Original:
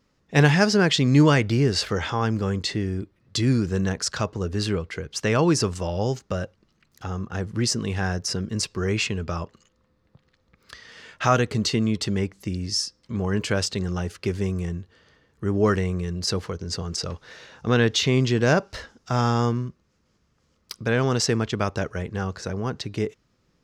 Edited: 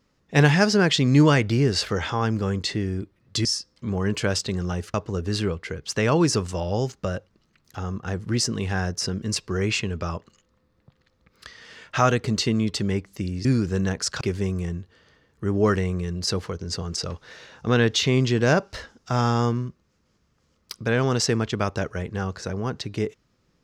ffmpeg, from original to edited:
-filter_complex "[0:a]asplit=5[s0][s1][s2][s3][s4];[s0]atrim=end=3.452[s5];[s1]atrim=start=12.718:end=14.212[s6];[s2]atrim=start=4.208:end=12.722[s7];[s3]atrim=start=3.448:end=4.212[s8];[s4]atrim=start=14.208[s9];[s5][s6]acrossfade=d=0.004:c1=hsin:c2=hsin[s10];[s10][s7]acrossfade=d=0.004:c1=hsin:c2=hsin[s11];[s11][s8]acrossfade=d=0.004:c1=hsin:c2=hsin[s12];[s12][s9]acrossfade=d=0.004:c1=hsin:c2=hsin"

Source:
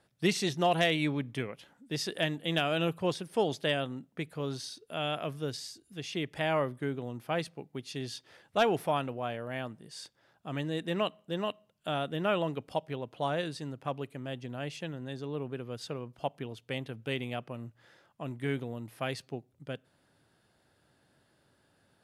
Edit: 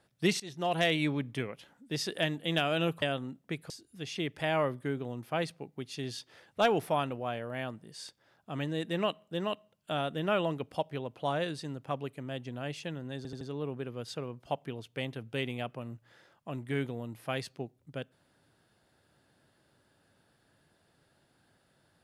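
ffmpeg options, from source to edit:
-filter_complex "[0:a]asplit=7[s0][s1][s2][s3][s4][s5][s6];[s0]atrim=end=0.4,asetpts=PTS-STARTPTS,afade=t=out:st=0.396:d=0.004:c=hsin:silence=0.0891251[s7];[s1]atrim=start=0.4:end=3.022,asetpts=PTS-STARTPTS,afade=t=in:d=0.49:silence=0.0891251[s8];[s2]atrim=start=3.698:end=4.382[s9];[s3]atrim=start=5.668:end=15.222[s10];[s4]atrim=start=15.138:end=15.222[s11];[s5]atrim=start=15.138:end=15.222[s12];[s6]atrim=start=15.138[s13];[s7][s8]concat=n=2:v=0:a=1[s14];[s14][s9]acrossfade=d=0.004:c1=hsin:c2=hsin[s15];[s15][s10]acrossfade=d=0.004:c1=hsin:c2=hsin[s16];[s16][s11]acrossfade=d=0.004:c1=hsin:c2=hsin[s17];[s17][s12]acrossfade=d=0.004:c1=hsin:c2=hsin[s18];[s18][s13]acrossfade=d=0.004:c1=hsin:c2=hsin"

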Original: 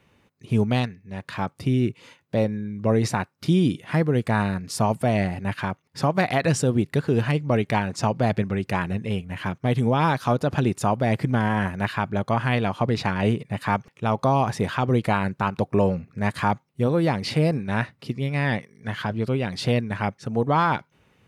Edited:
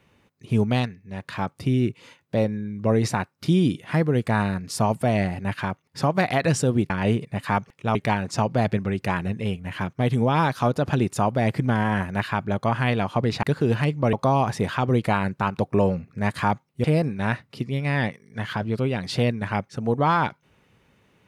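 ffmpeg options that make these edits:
-filter_complex "[0:a]asplit=6[s0][s1][s2][s3][s4][s5];[s0]atrim=end=6.902[s6];[s1]atrim=start=13.078:end=14.132[s7];[s2]atrim=start=7.598:end=13.082[s8];[s3]atrim=start=6.898:end=7.602[s9];[s4]atrim=start=14.128:end=16.842[s10];[s5]atrim=start=17.328[s11];[s6][s7]acrossfade=d=0.004:c1=hsin:c2=hsin[s12];[s12][s8]acrossfade=d=0.004:c1=hsin:c2=hsin[s13];[s13][s9]acrossfade=d=0.004:c1=hsin:c2=hsin[s14];[s14][s10]acrossfade=d=0.004:c1=hsin:c2=hsin[s15];[s15][s11]acrossfade=d=0.004:c1=hsin:c2=hsin"

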